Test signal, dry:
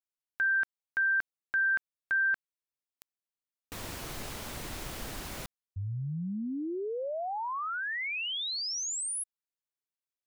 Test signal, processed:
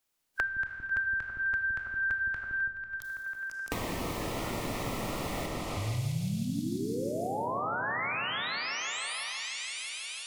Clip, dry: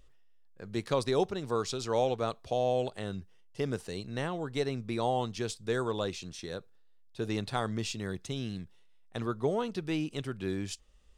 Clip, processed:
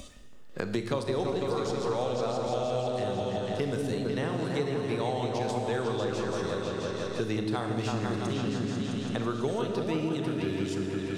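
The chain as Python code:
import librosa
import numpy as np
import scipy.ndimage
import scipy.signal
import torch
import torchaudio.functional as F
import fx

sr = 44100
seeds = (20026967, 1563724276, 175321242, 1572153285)

y = fx.echo_opening(x, sr, ms=165, hz=400, octaves=2, feedback_pct=70, wet_db=0)
y = fx.noise_reduce_blind(y, sr, reduce_db=13)
y = fx.rev_schroeder(y, sr, rt60_s=1.1, comb_ms=25, drr_db=5.5)
y = fx.band_squash(y, sr, depth_pct=100)
y = y * librosa.db_to_amplitude(-2.5)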